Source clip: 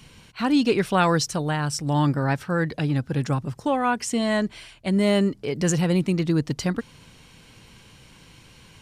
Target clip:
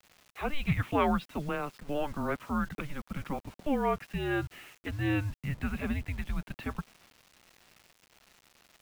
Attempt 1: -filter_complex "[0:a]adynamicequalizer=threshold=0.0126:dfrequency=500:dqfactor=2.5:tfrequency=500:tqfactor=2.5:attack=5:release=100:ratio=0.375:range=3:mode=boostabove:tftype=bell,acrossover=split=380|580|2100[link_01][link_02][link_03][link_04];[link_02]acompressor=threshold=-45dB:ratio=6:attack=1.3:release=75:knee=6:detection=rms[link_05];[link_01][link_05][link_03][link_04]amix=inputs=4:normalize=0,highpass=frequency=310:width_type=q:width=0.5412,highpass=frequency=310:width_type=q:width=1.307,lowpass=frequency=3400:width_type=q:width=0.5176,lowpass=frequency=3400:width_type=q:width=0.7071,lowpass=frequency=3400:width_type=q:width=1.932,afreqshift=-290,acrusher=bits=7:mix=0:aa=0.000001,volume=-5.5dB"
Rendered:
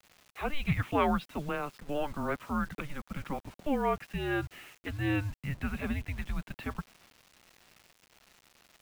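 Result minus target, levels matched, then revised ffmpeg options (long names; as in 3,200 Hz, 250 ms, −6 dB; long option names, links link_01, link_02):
downward compressor: peak gain reduction +8 dB
-filter_complex "[0:a]adynamicequalizer=threshold=0.0126:dfrequency=500:dqfactor=2.5:tfrequency=500:tqfactor=2.5:attack=5:release=100:ratio=0.375:range=3:mode=boostabove:tftype=bell,acrossover=split=380|580|2100[link_01][link_02][link_03][link_04];[link_02]acompressor=threshold=-35.5dB:ratio=6:attack=1.3:release=75:knee=6:detection=rms[link_05];[link_01][link_05][link_03][link_04]amix=inputs=4:normalize=0,highpass=frequency=310:width_type=q:width=0.5412,highpass=frequency=310:width_type=q:width=1.307,lowpass=frequency=3400:width_type=q:width=0.5176,lowpass=frequency=3400:width_type=q:width=0.7071,lowpass=frequency=3400:width_type=q:width=1.932,afreqshift=-290,acrusher=bits=7:mix=0:aa=0.000001,volume=-5.5dB"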